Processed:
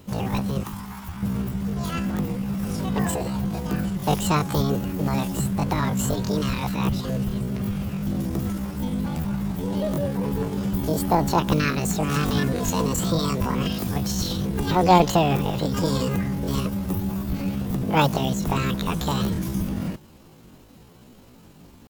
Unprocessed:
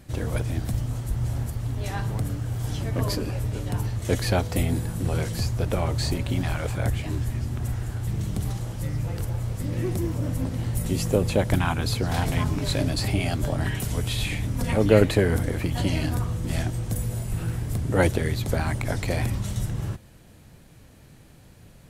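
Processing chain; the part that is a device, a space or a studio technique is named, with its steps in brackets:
chipmunk voice (pitch shifter +9 semitones)
0:00.63–0:01.23: low shelf with overshoot 680 Hz −9.5 dB, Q 3
level +1.5 dB

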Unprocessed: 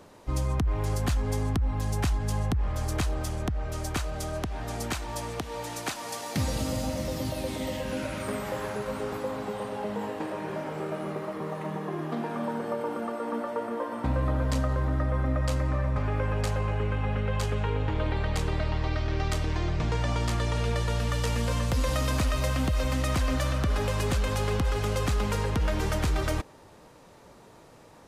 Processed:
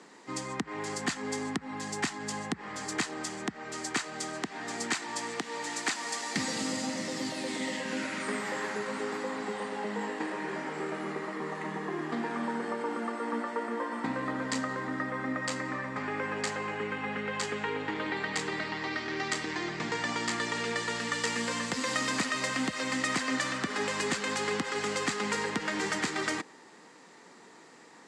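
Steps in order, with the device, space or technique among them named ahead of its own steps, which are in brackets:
television speaker (loudspeaker in its box 200–8,800 Hz, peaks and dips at 590 Hz −10 dB, 1,900 Hz +9 dB, 4,600 Hz +4 dB, 7,500 Hz +7 dB)

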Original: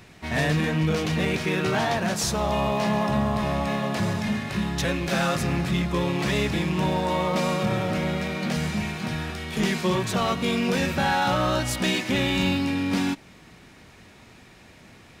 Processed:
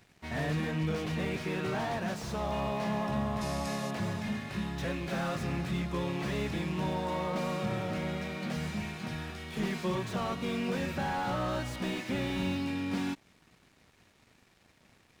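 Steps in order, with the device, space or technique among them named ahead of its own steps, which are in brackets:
early transistor amplifier (dead-zone distortion −52 dBFS; slew-rate limiting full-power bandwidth 74 Hz)
0:03.41–0:03.91: flat-topped bell 7,500 Hz +12.5 dB
level −8 dB

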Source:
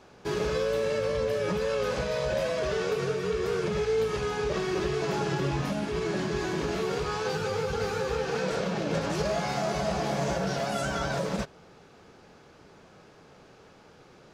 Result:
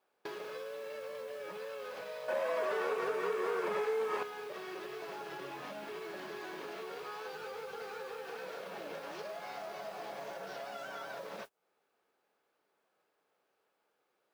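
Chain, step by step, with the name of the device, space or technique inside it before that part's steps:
baby monitor (band-pass filter 460–4,000 Hz; downward compressor 8 to 1, threshold −46 dBFS, peak gain reduction 19 dB; white noise bed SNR 20 dB; noise gate −51 dBFS, range −27 dB)
0:02.28–0:04.23: graphic EQ with 10 bands 250 Hz +10 dB, 500 Hz +5 dB, 1,000 Hz +12 dB, 2,000 Hz +6 dB, 8,000 Hz +5 dB
level +4.5 dB

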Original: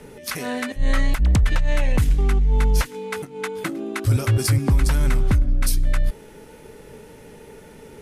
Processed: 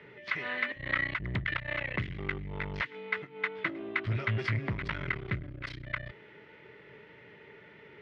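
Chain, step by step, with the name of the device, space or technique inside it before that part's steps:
guitar amplifier (tube saturation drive 18 dB, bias 0.7; bass and treble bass −7 dB, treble −10 dB; loudspeaker in its box 110–4,000 Hz, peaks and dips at 120 Hz +6 dB, 250 Hz −10 dB, 490 Hz −8 dB, 790 Hz −9 dB, 2,000 Hz +10 dB, 3,100 Hz +3 dB)
level −1.5 dB

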